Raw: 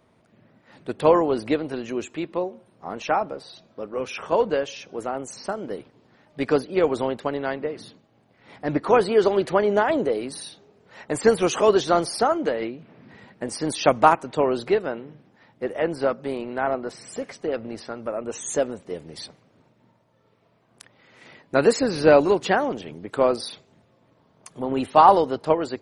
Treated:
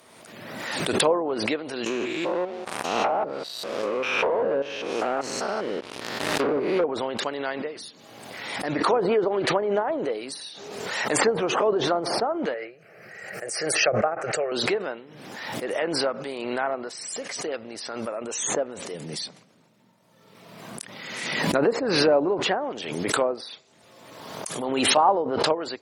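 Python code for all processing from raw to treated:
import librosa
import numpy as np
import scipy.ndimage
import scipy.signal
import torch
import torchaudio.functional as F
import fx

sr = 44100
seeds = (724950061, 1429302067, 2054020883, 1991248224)

y = fx.chain(x, sr, fx.spec_steps(hold_ms=200),
    fx.leveller(passes=3), at=(1.86, 6.84))
y = fx.chain(y, sr, fx.highpass(hz=98.0, slope=12),
    fx.fixed_phaser(hz=970.0, stages=6), at=(12.54, 14.52))
y = fx.chain(y, sr, fx.peak_eq(hz=180.0, db=11.5, octaves=1.1),
    fx.sustainer(db_per_s=69.0), at=(18.94, 21.57))
y = fx.riaa(y, sr, side='recording')
y = fx.env_lowpass_down(y, sr, base_hz=810.0, full_db=-16.5)
y = fx.pre_swell(y, sr, db_per_s=35.0)
y = y * librosa.db_to_amplitude(-2.0)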